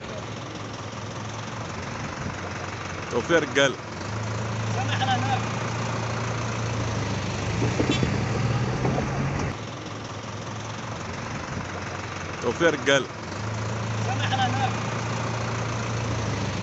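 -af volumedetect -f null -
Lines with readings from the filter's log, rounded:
mean_volume: -27.0 dB
max_volume: -5.8 dB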